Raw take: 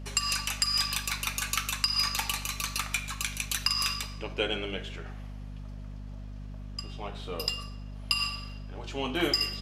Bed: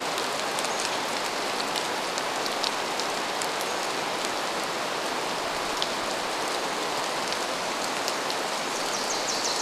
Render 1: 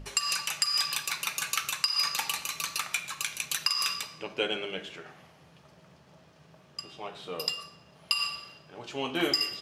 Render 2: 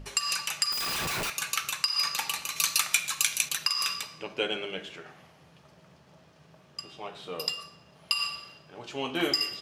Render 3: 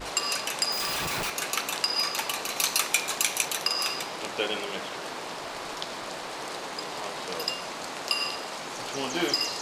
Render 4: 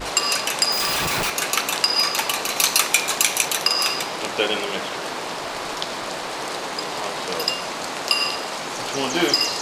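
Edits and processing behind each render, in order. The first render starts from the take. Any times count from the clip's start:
notches 50/100/150/200/250/300 Hz
0.72–1.3 Schmitt trigger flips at -41.5 dBFS; 2.56–3.49 high shelf 2700 Hz +10 dB
add bed -7.5 dB
gain +7.5 dB; limiter -1 dBFS, peak gain reduction 1.5 dB

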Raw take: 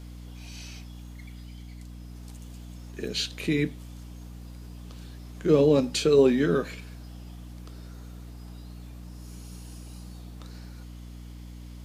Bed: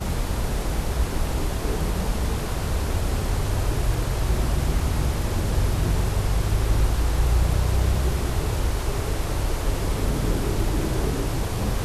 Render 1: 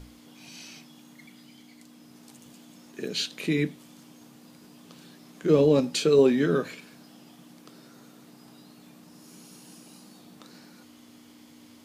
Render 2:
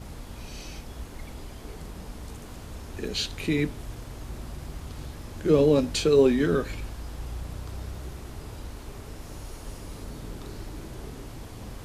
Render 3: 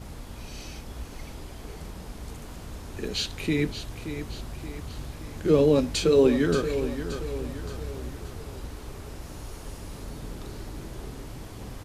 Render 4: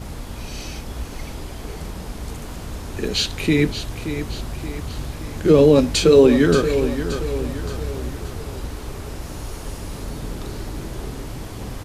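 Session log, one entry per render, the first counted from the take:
notches 60/120/180 Hz
add bed -15.5 dB
feedback echo 0.576 s, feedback 48%, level -10 dB
gain +8 dB; limiter -3 dBFS, peak gain reduction 2.5 dB

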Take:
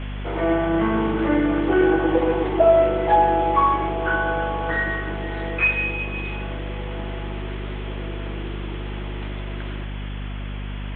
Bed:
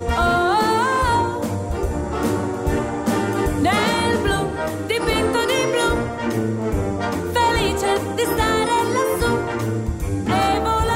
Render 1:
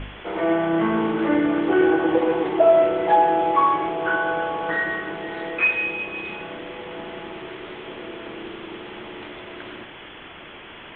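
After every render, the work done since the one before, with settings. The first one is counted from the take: de-hum 50 Hz, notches 5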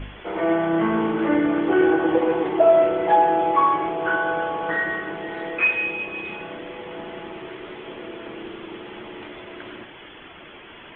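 denoiser 6 dB, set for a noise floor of -41 dBFS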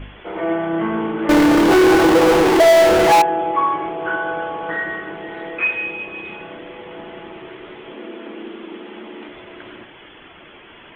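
1.29–3.22 power-law curve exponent 0.35; 7.93–9.29 resonant low shelf 170 Hz -10 dB, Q 3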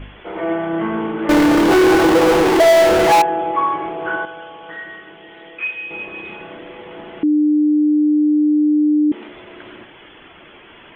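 4.25–5.91 ladder low-pass 3600 Hz, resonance 60%; 7.23–9.12 bleep 300 Hz -11 dBFS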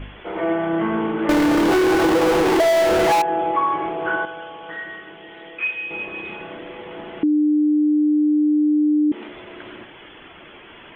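compressor, threshold -15 dBFS, peak gain reduction 6.5 dB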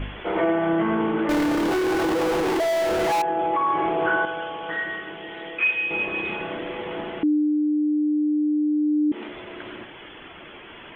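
limiter -16.5 dBFS, peak gain reduction 7 dB; vocal rider within 4 dB 0.5 s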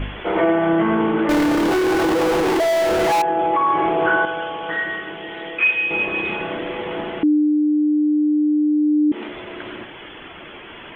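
gain +4.5 dB

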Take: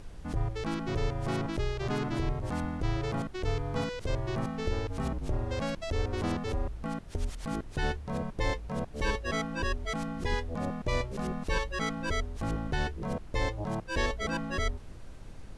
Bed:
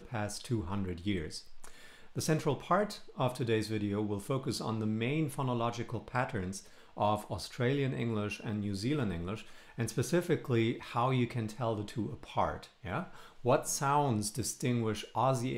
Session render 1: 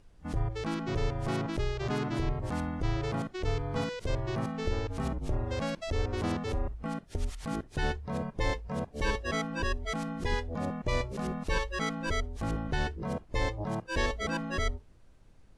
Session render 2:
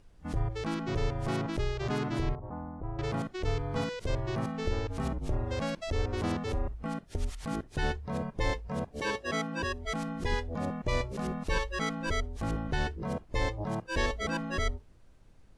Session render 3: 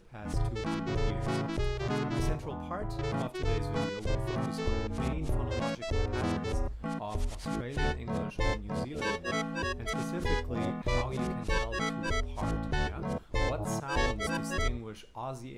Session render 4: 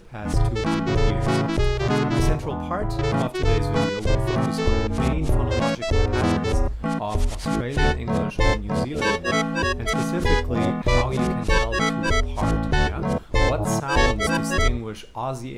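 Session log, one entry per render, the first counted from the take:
noise print and reduce 13 dB
2.35–2.99 ladder low-pass 1200 Hz, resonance 35%; 8.99–9.85 HPF 200 Hz -> 55 Hz
add bed -9 dB
gain +10.5 dB

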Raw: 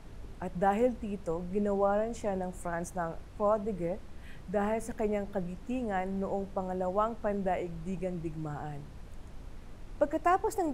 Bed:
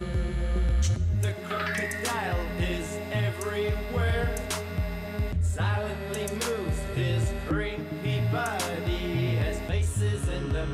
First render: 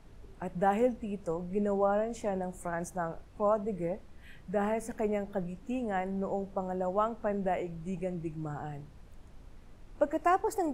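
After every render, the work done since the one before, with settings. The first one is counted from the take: noise print and reduce 6 dB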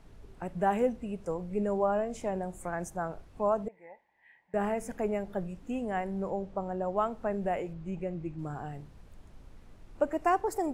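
3.68–4.54 double band-pass 1300 Hz, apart 1.1 oct; 6.3–6.97 air absorption 59 m; 7.73–8.39 air absorption 100 m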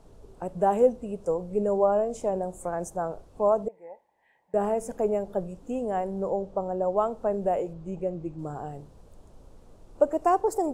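graphic EQ 500/1000/2000/8000 Hz +8/+3/-9/+5 dB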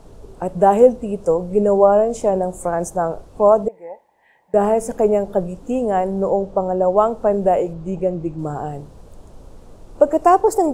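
gain +10 dB; limiter -1 dBFS, peak gain reduction 2 dB

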